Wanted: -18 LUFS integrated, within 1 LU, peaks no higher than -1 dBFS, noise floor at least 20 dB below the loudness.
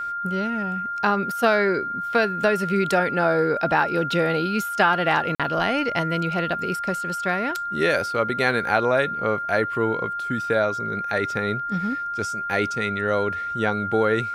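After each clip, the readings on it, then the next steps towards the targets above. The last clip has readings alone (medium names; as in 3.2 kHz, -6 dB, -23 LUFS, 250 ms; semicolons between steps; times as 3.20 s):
dropouts 1; longest dropout 46 ms; steady tone 1.4 kHz; tone level -26 dBFS; loudness -23.0 LUFS; peak level -4.5 dBFS; loudness target -18.0 LUFS
-> interpolate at 5.35 s, 46 ms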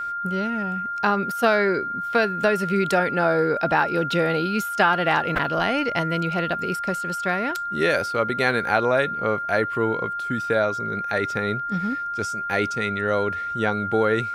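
dropouts 0; steady tone 1.4 kHz; tone level -26 dBFS
-> band-stop 1.4 kHz, Q 30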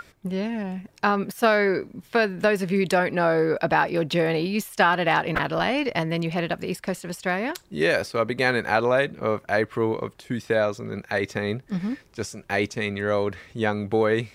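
steady tone not found; loudness -24.5 LUFS; peak level -5.0 dBFS; loudness target -18.0 LUFS
-> trim +6.5 dB; peak limiter -1 dBFS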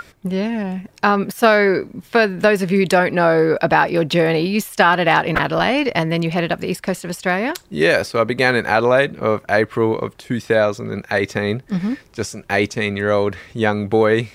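loudness -18.0 LUFS; peak level -1.0 dBFS; noise floor -49 dBFS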